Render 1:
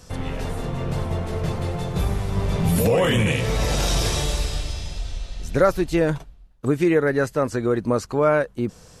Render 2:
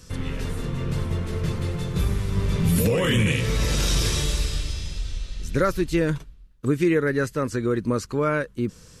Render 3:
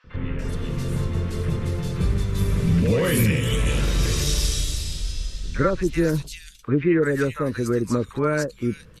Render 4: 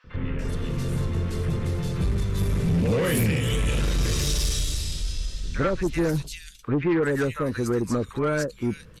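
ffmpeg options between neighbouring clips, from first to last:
ffmpeg -i in.wav -af "equalizer=frequency=730:width_type=o:width=0.72:gain=-13.5" out.wav
ffmpeg -i in.wav -filter_complex "[0:a]acrossover=split=890|2800[link_01][link_02][link_03];[link_01]adelay=40[link_04];[link_03]adelay=390[link_05];[link_04][link_02][link_05]amix=inputs=3:normalize=0,volume=1.5dB" out.wav
ffmpeg -i in.wav -af "asoftclip=type=tanh:threshold=-17dB" out.wav

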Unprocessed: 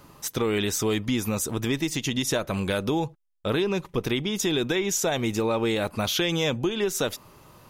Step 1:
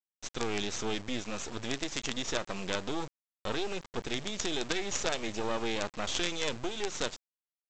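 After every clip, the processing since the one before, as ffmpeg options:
ffmpeg -i in.wav -af "lowshelf=frequency=260:gain=-6,aresample=16000,acrusher=bits=4:dc=4:mix=0:aa=0.000001,aresample=44100,volume=-3dB" out.wav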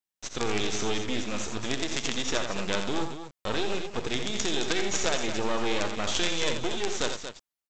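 ffmpeg -i in.wav -af "aecho=1:1:45|66|85|231:0.112|0.224|0.398|0.335,volume=3.5dB" out.wav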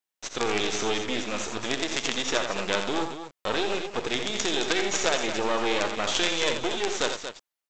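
ffmpeg -i in.wav -af "bass=frequency=250:gain=-9,treble=frequency=4000:gain=-3,volume=4dB" out.wav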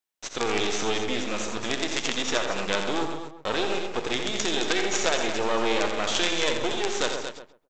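ffmpeg -i in.wav -filter_complex "[0:a]asplit=2[link_01][link_02];[link_02]adelay=132,lowpass=frequency=1200:poles=1,volume=-6dB,asplit=2[link_03][link_04];[link_04]adelay=132,lowpass=frequency=1200:poles=1,volume=0.2,asplit=2[link_05][link_06];[link_06]adelay=132,lowpass=frequency=1200:poles=1,volume=0.2[link_07];[link_01][link_03][link_05][link_07]amix=inputs=4:normalize=0" out.wav

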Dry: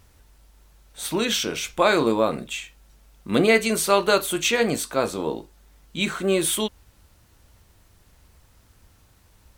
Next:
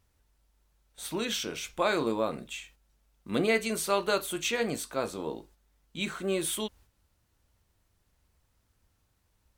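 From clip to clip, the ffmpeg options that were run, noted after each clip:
ffmpeg -i in.wav -af "agate=range=-7dB:threshold=-47dB:ratio=16:detection=peak,volume=-8.5dB" out.wav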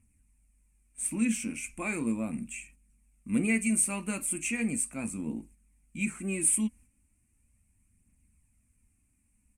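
ffmpeg -i in.wav -af "firequalizer=gain_entry='entry(150,0);entry(230,10);entry(400,-14);entry(1100,-12);entry(1500,-13);entry(2400,4);entry(3500,-25);entry(8700,12);entry(15000,-16)':delay=0.05:min_phase=1,aphaser=in_gain=1:out_gain=1:delay=4.2:decay=0.34:speed=0.37:type=triangular" out.wav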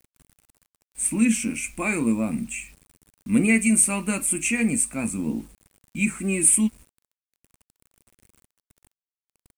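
ffmpeg -i in.wav -af "acrusher=bits=9:mix=0:aa=0.000001,volume=8dB" out.wav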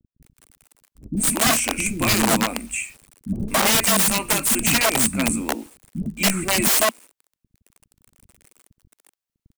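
ffmpeg -i in.wav -filter_complex "[0:a]aeval=exprs='(mod(8.41*val(0)+1,2)-1)/8.41':channel_layout=same,acrossover=split=300[link_01][link_02];[link_02]adelay=220[link_03];[link_01][link_03]amix=inputs=2:normalize=0,volume=6dB" out.wav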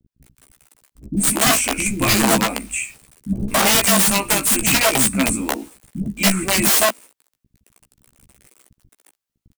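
ffmpeg -i in.wav -filter_complex "[0:a]asplit=2[link_01][link_02];[link_02]adelay=15,volume=-5dB[link_03];[link_01][link_03]amix=inputs=2:normalize=0,volume=1.5dB" out.wav

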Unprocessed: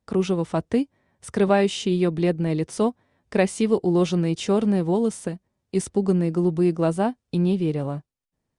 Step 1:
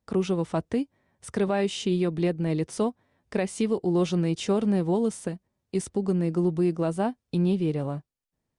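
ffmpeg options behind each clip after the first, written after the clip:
ffmpeg -i in.wav -af "alimiter=limit=-13.5dB:level=0:latency=1:release=194,volume=-2.5dB" out.wav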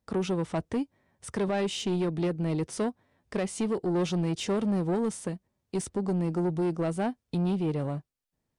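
ffmpeg -i in.wav -af "asoftclip=type=tanh:threshold=-22.5dB" out.wav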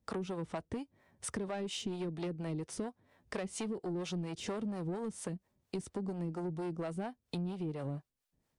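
ffmpeg -i in.wav -filter_complex "[0:a]acrossover=split=460[link_01][link_02];[link_01]aeval=exprs='val(0)*(1-0.7/2+0.7/2*cos(2*PI*4.3*n/s))':channel_layout=same[link_03];[link_02]aeval=exprs='val(0)*(1-0.7/2-0.7/2*cos(2*PI*4.3*n/s))':channel_layout=same[link_04];[link_03][link_04]amix=inputs=2:normalize=0,acompressor=threshold=-41dB:ratio=5,volume=4.5dB" out.wav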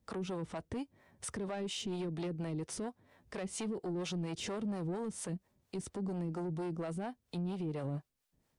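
ffmpeg -i in.wav -af "alimiter=level_in=10.5dB:limit=-24dB:level=0:latency=1:release=33,volume=-10.5dB,volume=3dB" out.wav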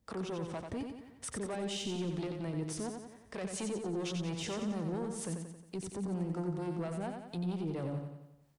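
ffmpeg -i in.wav -af "aecho=1:1:90|180|270|360|450|540|630:0.531|0.276|0.144|0.0746|0.0388|0.0202|0.0105" out.wav

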